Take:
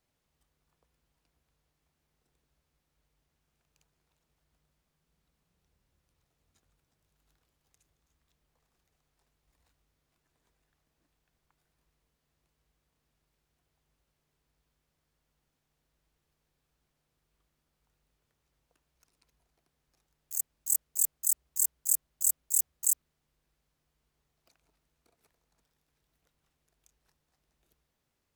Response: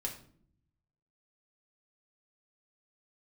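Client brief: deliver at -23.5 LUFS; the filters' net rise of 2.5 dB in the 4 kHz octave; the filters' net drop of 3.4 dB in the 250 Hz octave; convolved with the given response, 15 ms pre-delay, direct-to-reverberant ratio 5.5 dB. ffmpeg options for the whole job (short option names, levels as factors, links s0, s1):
-filter_complex "[0:a]equalizer=f=250:t=o:g=-5.5,equalizer=f=4000:t=o:g=3.5,asplit=2[s0][s1];[1:a]atrim=start_sample=2205,adelay=15[s2];[s1][s2]afir=irnorm=-1:irlink=0,volume=0.501[s3];[s0][s3]amix=inputs=2:normalize=0,volume=1.5"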